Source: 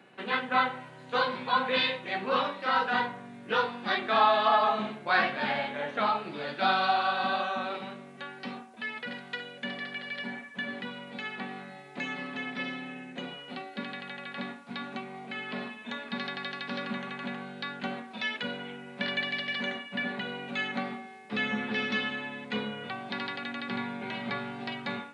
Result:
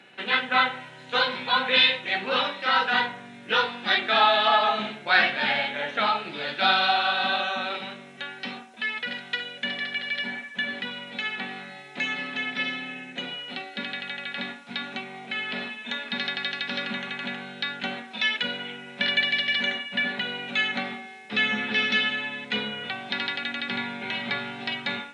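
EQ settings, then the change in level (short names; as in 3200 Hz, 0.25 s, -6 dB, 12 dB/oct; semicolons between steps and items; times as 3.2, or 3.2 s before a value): bell 3600 Hz +10.5 dB 2.7 oct; notch 1100 Hz, Q 7.9; notch 4600 Hz, Q 9.9; 0.0 dB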